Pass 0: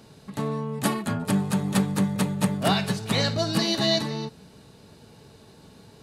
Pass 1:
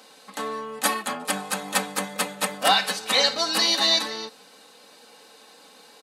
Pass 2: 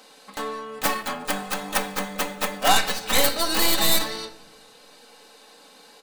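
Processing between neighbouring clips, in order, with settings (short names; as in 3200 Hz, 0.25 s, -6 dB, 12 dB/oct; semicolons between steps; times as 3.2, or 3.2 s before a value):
HPF 630 Hz 12 dB/oct; comb 3.9 ms, depth 67%; gain +5 dB
tracing distortion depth 0.34 ms; shoebox room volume 400 m³, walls mixed, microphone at 0.34 m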